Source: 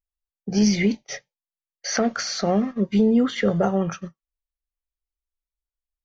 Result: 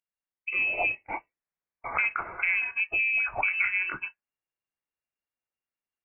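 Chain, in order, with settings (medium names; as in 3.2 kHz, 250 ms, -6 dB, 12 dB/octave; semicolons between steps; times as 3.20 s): gain riding 0.5 s; high-pass 340 Hz 6 dB/octave; compression 2.5:1, threshold -31 dBFS, peak gain reduction 9.5 dB; frequency inversion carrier 2.8 kHz; trim +4.5 dB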